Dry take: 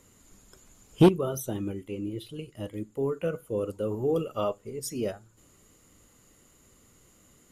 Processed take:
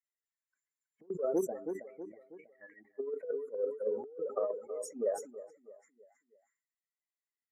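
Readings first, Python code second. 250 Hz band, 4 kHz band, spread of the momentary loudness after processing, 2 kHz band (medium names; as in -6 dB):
-14.5 dB, under -20 dB, 20 LU, -12.0 dB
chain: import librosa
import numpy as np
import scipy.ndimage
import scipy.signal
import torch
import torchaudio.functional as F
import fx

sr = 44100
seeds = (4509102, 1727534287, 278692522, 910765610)

y = fx.bin_expand(x, sr, power=2.0)
y = fx.auto_wah(y, sr, base_hz=460.0, top_hz=2600.0, q=3.4, full_db=-33.0, direction='down')
y = fx.echo_feedback(y, sr, ms=322, feedback_pct=44, wet_db=-18)
y = fx.over_compress(y, sr, threshold_db=-40.0, ratio=-0.5)
y = scipy.signal.sosfilt(scipy.signal.butter(4, 200.0, 'highpass', fs=sr, output='sos'), y)
y = fx.high_shelf(y, sr, hz=3300.0, db=7.5)
y = fx.env_lowpass(y, sr, base_hz=1500.0, full_db=-40.5)
y = scipy.signal.sosfilt(scipy.signal.ellip(3, 1.0, 40, [1900.0, 6200.0], 'bandstop', fs=sr, output='sos'), y)
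y = fx.sustainer(y, sr, db_per_s=120.0)
y = y * 10.0 ** (6.5 / 20.0)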